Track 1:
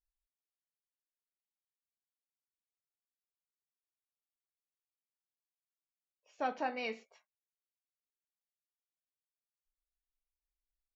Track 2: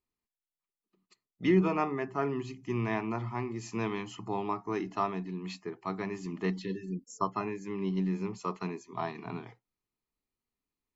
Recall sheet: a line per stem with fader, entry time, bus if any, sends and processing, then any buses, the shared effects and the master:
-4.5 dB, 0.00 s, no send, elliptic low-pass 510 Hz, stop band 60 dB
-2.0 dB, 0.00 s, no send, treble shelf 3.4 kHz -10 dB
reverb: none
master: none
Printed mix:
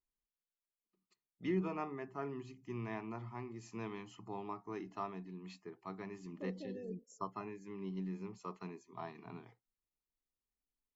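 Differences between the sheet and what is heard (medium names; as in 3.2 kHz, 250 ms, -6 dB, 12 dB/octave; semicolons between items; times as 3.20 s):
stem 2 -2.0 dB -> -10.5 dB; master: extra treble shelf 4.8 kHz +10 dB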